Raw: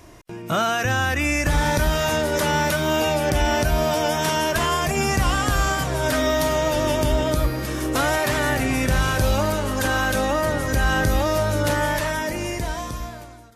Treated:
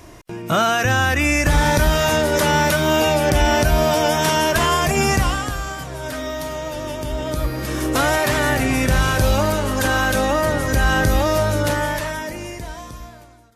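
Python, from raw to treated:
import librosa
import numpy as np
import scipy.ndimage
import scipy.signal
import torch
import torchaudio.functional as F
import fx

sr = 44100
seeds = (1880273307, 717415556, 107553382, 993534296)

y = fx.gain(x, sr, db=fx.line((5.13, 4.0), (5.61, -6.5), (7.02, -6.5), (7.76, 3.0), (11.45, 3.0), (12.62, -5.0)))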